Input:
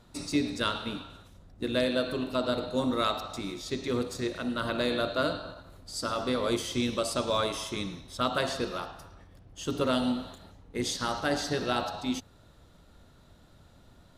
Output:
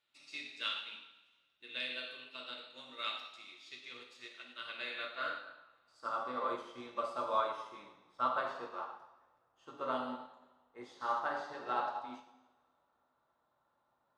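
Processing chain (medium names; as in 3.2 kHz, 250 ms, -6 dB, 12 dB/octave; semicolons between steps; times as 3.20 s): band-pass sweep 2.7 kHz -> 1 kHz, 4.65–6.21 s; two-slope reverb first 0.97 s, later 2.6 s, DRR -1 dB; upward expansion 1.5:1, over -51 dBFS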